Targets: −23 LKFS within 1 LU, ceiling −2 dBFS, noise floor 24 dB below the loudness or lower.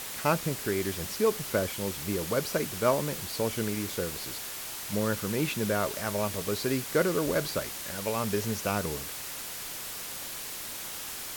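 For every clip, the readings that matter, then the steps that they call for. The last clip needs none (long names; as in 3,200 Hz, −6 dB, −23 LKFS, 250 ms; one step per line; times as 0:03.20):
background noise floor −39 dBFS; target noise floor −55 dBFS; integrated loudness −30.5 LKFS; sample peak −11.0 dBFS; target loudness −23.0 LKFS
→ broadband denoise 16 dB, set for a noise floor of −39 dBFS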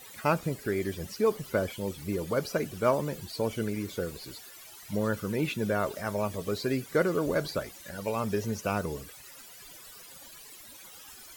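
background noise floor −49 dBFS; target noise floor −55 dBFS
→ broadband denoise 6 dB, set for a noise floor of −49 dBFS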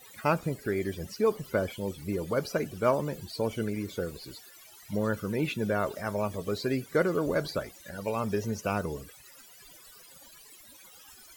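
background noise floor −53 dBFS; target noise floor −55 dBFS
→ broadband denoise 6 dB, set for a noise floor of −53 dBFS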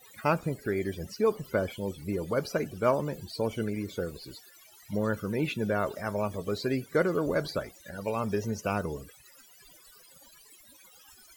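background noise floor −56 dBFS; integrated loudness −31.0 LKFS; sample peak −11.5 dBFS; target loudness −23.0 LKFS
→ level +8 dB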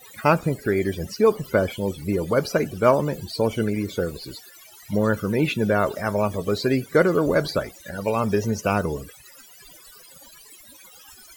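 integrated loudness −23.0 LKFS; sample peak −3.5 dBFS; background noise floor −48 dBFS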